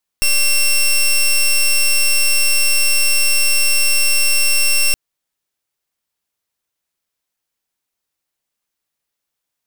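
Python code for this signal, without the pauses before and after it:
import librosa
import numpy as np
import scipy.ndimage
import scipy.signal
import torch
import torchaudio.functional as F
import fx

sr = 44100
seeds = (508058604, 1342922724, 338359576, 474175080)

y = fx.pulse(sr, length_s=4.72, hz=2720.0, level_db=-13.0, duty_pct=14)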